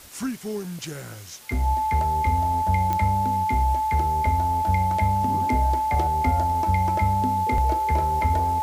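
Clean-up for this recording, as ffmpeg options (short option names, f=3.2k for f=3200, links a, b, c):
-af "adeclick=t=4,bandreject=f=870:w=30,afwtdn=0.005"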